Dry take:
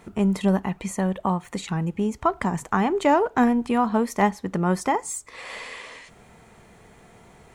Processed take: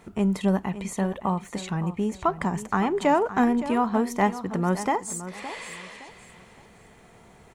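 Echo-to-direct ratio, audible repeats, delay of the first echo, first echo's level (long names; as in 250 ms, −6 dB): −12.5 dB, 3, 566 ms, −13.0 dB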